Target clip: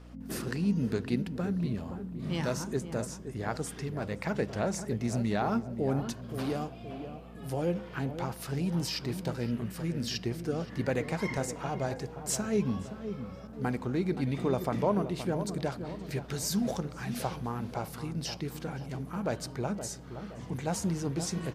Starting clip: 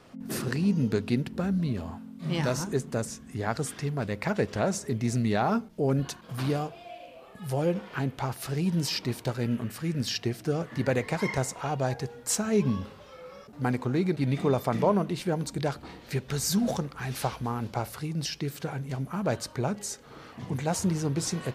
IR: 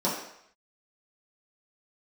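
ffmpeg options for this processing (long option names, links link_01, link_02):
-filter_complex "[0:a]aeval=exprs='val(0)+0.00631*(sin(2*PI*60*n/s)+sin(2*PI*2*60*n/s)/2+sin(2*PI*3*60*n/s)/3+sin(2*PI*4*60*n/s)/4+sin(2*PI*5*60*n/s)/5)':channel_layout=same,asplit=2[link_01][link_02];[link_02]adelay=522,lowpass=frequency=1100:poles=1,volume=-9dB,asplit=2[link_03][link_04];[link_04]adelay=522,lowpass=frequency=1100:poles=1,volume=0.52,asplit=2[link_05][link_06];[link_06]adelay=522,lowpass=frequency=1100:poles=1,volume=0.52,asplit=2[link_07][link_08];[link_08]adelay=522,lowpass=frequency=1100:poles=1,volume=0.52,asplit=2[link_09][link_10];[link_10]adelay=522,lowpass=frequency=1100:poles=1,volume=0.52,asplit=2[link_11][link_12];[link_12]adelay=522,lowpass=frequency=1100:poles=1,volume=0.52[link_13];[link_01][link_03][link_05][link_07][link_09][link_11][link_13]amix=inputs=7:normalize=0,asplit=2[link_14][link_15];[1:a]atrim=start_sample=2205,asetrate=38367,aresample=44100[link_16];[link_15][link_16]afir=irnorm=-1:irlink=0,volume=-31dB[link_17];[link_14][link_17]amix=inputs=2:normalize=0,volume=-4.5dB"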